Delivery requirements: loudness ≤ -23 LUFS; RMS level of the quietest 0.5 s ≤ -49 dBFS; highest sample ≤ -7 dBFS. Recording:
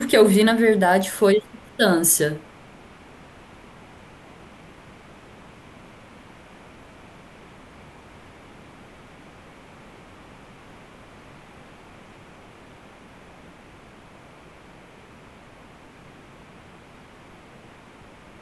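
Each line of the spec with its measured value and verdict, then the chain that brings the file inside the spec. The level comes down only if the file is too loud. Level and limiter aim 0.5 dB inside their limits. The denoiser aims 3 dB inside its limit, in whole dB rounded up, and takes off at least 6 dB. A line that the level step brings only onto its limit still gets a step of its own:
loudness -18.0 LUFS: fail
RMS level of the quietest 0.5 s -47 dBFS: fail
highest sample -4.5 dBFS: fail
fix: gain -5.5 dB

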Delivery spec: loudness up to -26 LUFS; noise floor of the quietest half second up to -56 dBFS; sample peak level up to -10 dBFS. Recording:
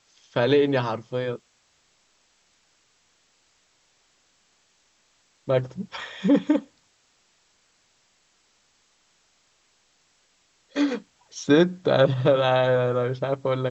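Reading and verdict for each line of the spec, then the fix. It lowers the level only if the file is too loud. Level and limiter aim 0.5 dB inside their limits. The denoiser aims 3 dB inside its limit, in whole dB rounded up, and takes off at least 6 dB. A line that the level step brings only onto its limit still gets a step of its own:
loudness -23.5 LUFS: fail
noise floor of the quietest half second -65 dBFS: OK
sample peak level -6.5 dBFS: fail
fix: gain -3 dB; limiter -10.5 dBFS

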